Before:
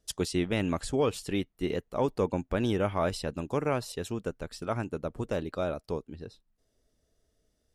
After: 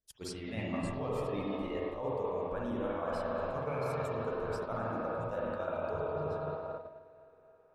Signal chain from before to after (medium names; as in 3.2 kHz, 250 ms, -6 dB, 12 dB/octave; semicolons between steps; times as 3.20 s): feedback echo behind a band-pass 266 ms, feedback 81%, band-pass 880 Hz, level -11.5 dB; spring tank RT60 3 s, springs 46/54 ms, chirp 60 ms, DRR -6 dB; reverse; compression 12:1, threshold -30 dBFS, peak gain reduction 13.5 dB; reverse; gate -35 dBFS, range -12 dB; spectral noise reduction 8 dB